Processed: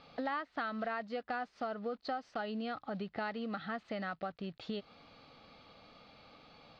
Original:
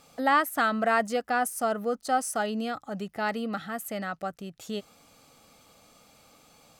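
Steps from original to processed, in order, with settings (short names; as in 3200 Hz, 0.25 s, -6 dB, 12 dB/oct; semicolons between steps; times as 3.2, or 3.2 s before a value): block floating point 5-bit; compressor 6:1, threshold -36 dBFS, peak gain reduction 16.5 dB; elliptic low-pass 4400 Hz, stop band 70 dB; gain +1 dB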